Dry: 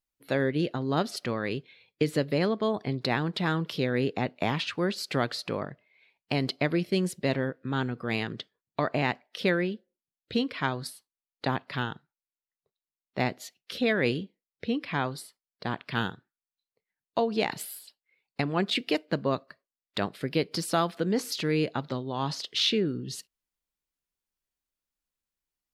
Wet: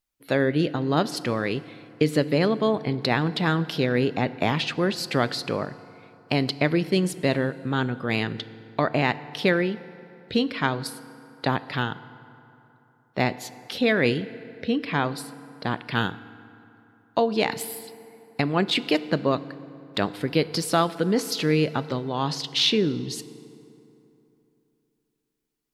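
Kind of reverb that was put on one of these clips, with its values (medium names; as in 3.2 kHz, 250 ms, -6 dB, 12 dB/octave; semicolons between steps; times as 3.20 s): FDN reverb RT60 3.1 s, high-frequency decay 0.55×, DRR 15 dB; trim +4.5 dB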